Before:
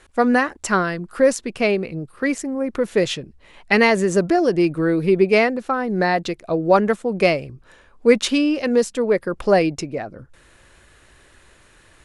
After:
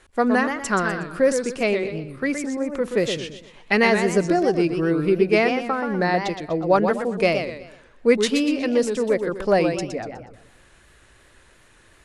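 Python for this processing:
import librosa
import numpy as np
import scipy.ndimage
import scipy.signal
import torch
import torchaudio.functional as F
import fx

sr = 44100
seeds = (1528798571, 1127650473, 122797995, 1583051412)

y = fx.echo_warbled(x, sr, ms=122, feedback_pct=37, rate_hz=2.8, cents=189, wet_db=-7.0)
y = y * 10.0 ** (-3.0 / 20.0)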